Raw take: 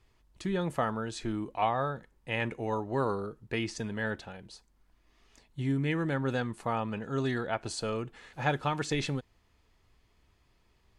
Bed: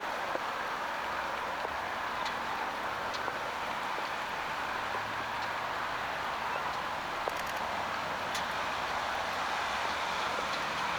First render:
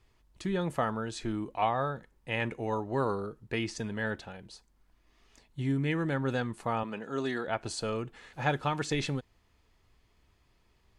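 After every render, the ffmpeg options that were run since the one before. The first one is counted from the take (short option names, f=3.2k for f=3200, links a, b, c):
-filter_complex "[0:a]asettb=1/sr,asplit=3[a][b][c];[a]atrim=end=6.834[d];[b]atrim=start=6.83:end=7.48,asetpts=PTS-STARTPTS,afade=t=in:d=0.004:c=qsin,afade=t=out:st=0.646:d=0.004:c=qsin,highpass=230[e];[c]atrim=start=7.476[f];[d][e]acrossfade=d=0.004:c1=hsin:c2=qsin[g];[g][f]acrossfade=d=0.004:c1=qsin:c2=hsin"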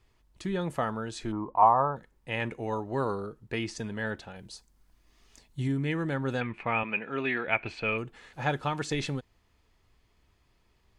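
-filter_complex "[0:a]asplit=3[a][b][c];[a]afade=t=out:st=1.31:d=0.02[d];[b]lowpass=f=1k:t=q:w=4.8,afade=t=in:st=1.31:d=0.02,afade=t=out:st=1.95:d=0.02[e];[c]afade=t=in:st=1.95:d=0.02[f];[d][e][f]amix=inputs=3:normalize=0,asettb=1/sr,asplit=3[g][h][i];[g]atrim=end=4.364[j];[h]atrim=start=4.36:end=5.68,asetpts=PTS-STARTPTS,afade=t=in:d=0.004:c=qsin,afade=t=out:st=1.316:d=0.004:c=qsin,bass=f=250:g=3,treble=f=4k:g=7[k];[i]atrim=start=5.676[l];[j][k]acrossfade=d=0.004:c1=hsin:c2=qsin[m];[m][l]acrossfade=d=0.004:c1=qsin:c2=hsin,asettb=1/sr,asplit=3[n][o][p];[n]atrim=end=6.414[q];[o]atrim=start=6.41:end=7.98,asetpts=PTS-STARTPTS,afade=t=in:d=0.004:c=qsin,afade=t=out:st=1.566:d=0.004:c=qsin,lowpass=f=2.4k:t=q:w=11[r];[p]atrim=start=7.976[s];[q][r]acrossfade=d=0.004:c1=hsin:c2=qsin[t];[t][s]acrossfade=d=0.004:c1=qsin:c2=hsin"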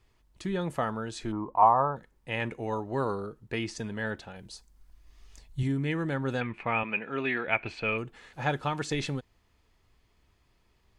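-filter_complex "[0:a]asettb=1/sr,asplit=3[a][b][c];[a]atrim=end=4.364[d];[b]atrim=start=4.36:end=5.63,asetpts=PTS-STARTPTS,afade=t=in:d=0.004:c=qsin,afade=t=out:st=1.266:d=0.004:c=qsin,asubboost=boost=10.5:cutoff=98[e];[c]atrim=start=5.626[f];[d][e]acrossfade=d=0.004:c1=hsin:c2=qsin[g];[g][f]acrossfade=d=0.004:c1=qsin:c2=hsin"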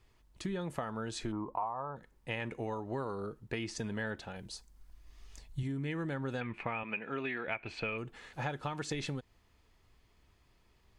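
-af "acompressor=threshold=-33dB:ratio=12"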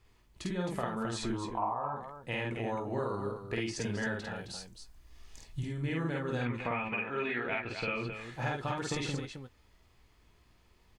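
-filter_complex "[0:a]asplit=2[a][b];[b]adelay=17,volume=-11dB[c];[a][c]amix=inputs=2:normalize=0,aecho=1:1:49.56|265.3:0.891|0.447"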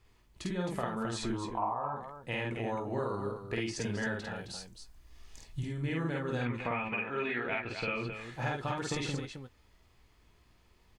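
-af anull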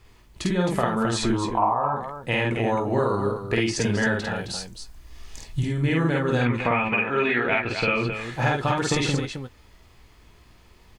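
-af "volume=11.5dB"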